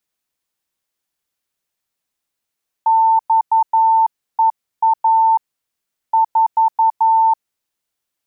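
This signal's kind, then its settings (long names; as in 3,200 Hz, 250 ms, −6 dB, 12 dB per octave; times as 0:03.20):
Morse code "XEA 4" 11 words per minute 895 Hz −9.5 dBFS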